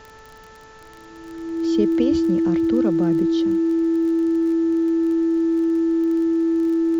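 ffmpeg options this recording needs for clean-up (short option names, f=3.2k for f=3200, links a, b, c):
-af "adeclick=t=4,bandreject=f=439.6:t=h:w=4,bandreject=f=879.2:t=h:w=4,bandreject=f=1.3188k:t=h:w=4,bandreject=f=1.7584k:t=h:w=4,bandreject=f=330:w=30,agate=range=-21dB:threshold=-36dB"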